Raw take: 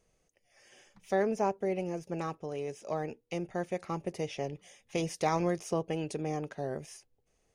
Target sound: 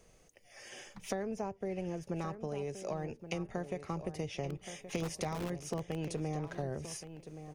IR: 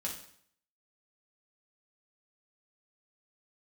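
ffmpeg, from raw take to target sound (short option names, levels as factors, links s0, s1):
-filter_complex "[0:a]acrossover=split=110[s0][s1];[s0]aeval=exprs='(mod(237*val(0)+1,2)-1)/237':c=same[s2];[s1]acompressor=threshold=0.00562:ratio=10[s3];[s2][s3]amix=inputs=2:normalize=0,asplit=2[s4][s5];[s5]adelay=1123,lowpass=f=3100:p=1,volume=0.282,asplit=2[s6][s7];[s7]adelay=1123,lowpass=f=3100:p=1,volume=0.19,asplit=2[s8][s9];[s9]adelay=1123,lowpass=f=3100:p=1,volume=0.19[s10];[s4][s6][s8][s10]amix=inputs=4:normalize=0,volume=2.99"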